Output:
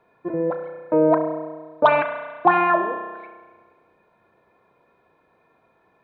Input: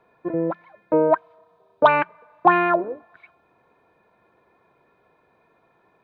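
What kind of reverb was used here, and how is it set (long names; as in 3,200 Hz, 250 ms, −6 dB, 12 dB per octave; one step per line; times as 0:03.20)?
spring reverb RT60 1.5 s, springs 32 ms, chirp 50 ms, DRR 6 dB
level −1 dB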